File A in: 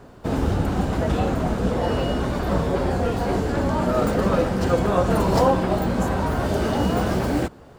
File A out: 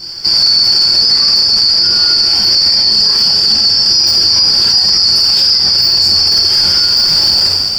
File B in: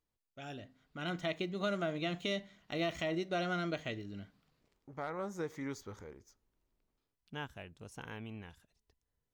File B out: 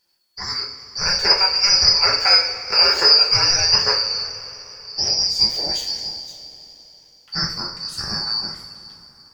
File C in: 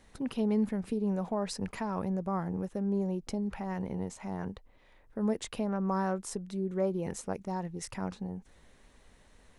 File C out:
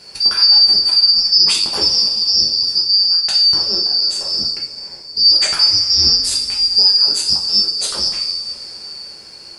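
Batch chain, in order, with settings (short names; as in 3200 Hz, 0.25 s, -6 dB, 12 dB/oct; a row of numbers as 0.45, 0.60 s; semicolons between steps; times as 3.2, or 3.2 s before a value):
four-band scrambler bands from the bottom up 2341; two-slope reverb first 0.45 s, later 3.8 s, from -18 dB, DRR -4 dB; maximiser +16.5 dB; normalise peaks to -2 dBFS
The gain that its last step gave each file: -1.0, -1.0, -1.0 dB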